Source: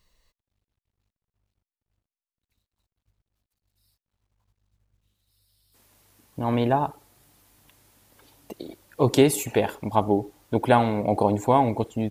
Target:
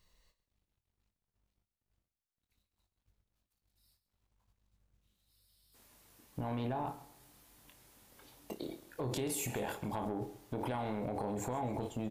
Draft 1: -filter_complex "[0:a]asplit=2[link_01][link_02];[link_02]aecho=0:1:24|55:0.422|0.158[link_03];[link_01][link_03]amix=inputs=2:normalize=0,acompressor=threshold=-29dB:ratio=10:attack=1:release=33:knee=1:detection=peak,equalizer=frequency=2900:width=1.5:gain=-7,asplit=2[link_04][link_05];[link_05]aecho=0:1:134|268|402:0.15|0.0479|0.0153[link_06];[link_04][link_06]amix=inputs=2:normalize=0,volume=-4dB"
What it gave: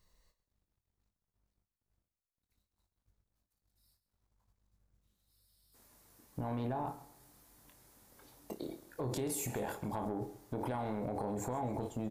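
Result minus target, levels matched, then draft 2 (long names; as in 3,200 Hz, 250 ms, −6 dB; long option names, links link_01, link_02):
4,000 Hz band −4.0 dB
-filter_complex "[0:a]asplit=2[link_01][link_02];[link_02]aecho=0:1:24|55:0.422|0.158[link_03];[link_01][link_03]amix=inputs=2:normalize=0,acompressor=threshold=-29dB:ratio=10:attack=1:release=33:knee=1:detection=peak,asplit=2[link_04][link_05];[link_05]aecho=0:1:134|268|402:0.15|0.0479|0.0153[link_06];[link_04][link_06]amix=inputs=2:normalize=0,volume=-4dB"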